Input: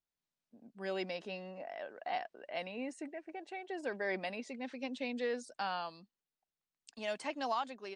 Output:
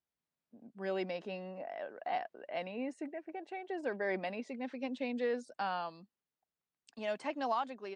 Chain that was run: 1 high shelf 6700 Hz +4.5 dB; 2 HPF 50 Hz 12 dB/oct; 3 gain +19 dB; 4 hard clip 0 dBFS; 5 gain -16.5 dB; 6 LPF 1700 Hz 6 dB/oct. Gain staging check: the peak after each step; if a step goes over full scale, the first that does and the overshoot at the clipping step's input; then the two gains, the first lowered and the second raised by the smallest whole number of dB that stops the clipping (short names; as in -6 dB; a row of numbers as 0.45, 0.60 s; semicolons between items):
-24.0, -24.0, -5.0, -5.0, -21.5, -23.0 dBFS; no overload